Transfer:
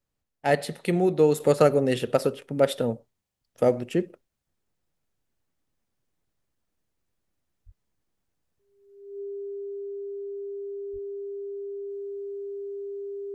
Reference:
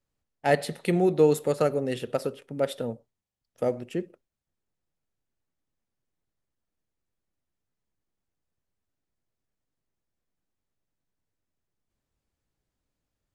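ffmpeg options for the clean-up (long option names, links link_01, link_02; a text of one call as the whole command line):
ffmpeg -i in.wav -filter_complex "[0:a]bandreject=frequency=400:width=30,asplit=3[link_01][link_02][link_03];[link_01]afade=type=out:start_time=7.65:duration=0.02[link_04];[link_02]highpass=frequency=140:width=0.5412,highpass=frequency=140:width=1.3066,afade=type=in:start_time=7.65:duration=0.02,afade=type=out:start_time=7.77:duration=0.02[link_05];[link_03]afade=type=in:start_time=7.77:duration=0.02[link_06];[link_04][link_05][link_06]amix=inputs=3:normalize=0,asplit=3[link_07][link_08][link_09];[link_07]afade=type=out:start_time=10.92:duration=0.02[link_10];[link_08]highpass=frequency=140:width=0.5412,highpass=frequency=140:width=1.3066,afade=type=in:start_time=10.92:duration=0.02,afade=type=out:start_time=11.04:duration=0.02[link_11];[link_09]afade=type=in:start_time=11.04:duration=0.02[link_12];[link_10][link_11][link_12]amix=inputs=3:normalize=0,asetnsamples=nb_out_samples=441:pad=0,asendcmd='1.4 volume volume -5.5dB',volume=0dB" out.wav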